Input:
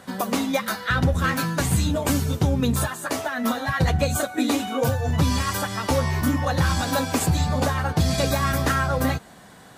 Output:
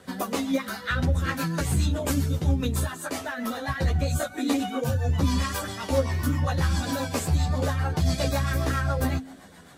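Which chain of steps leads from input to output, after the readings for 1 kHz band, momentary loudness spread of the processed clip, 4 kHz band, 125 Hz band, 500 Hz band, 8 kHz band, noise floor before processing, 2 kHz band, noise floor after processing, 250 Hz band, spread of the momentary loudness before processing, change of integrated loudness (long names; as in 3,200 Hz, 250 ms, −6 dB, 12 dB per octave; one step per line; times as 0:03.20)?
−6.0 dB, 5 LU, −5.0 dB, −2.0 dB, −4.0 dB, −5.5 dB, −47 dBFS, −5.5 dB, −46 dBFS, −4.0 dB, 4 LU, −3.5 dB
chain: hum removal 52.48 Hz, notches 5
in parallel at −1.5 dB: downward compressor, threshold −28 dBFS, peak gain reduction 12 dB
on the sum: rotating-speaker cabinet horn 7.5 Hz
multi-voice chorus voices 4, 0.68 Hz, delay 13 ms, depth 2.1 ms
level −2 dB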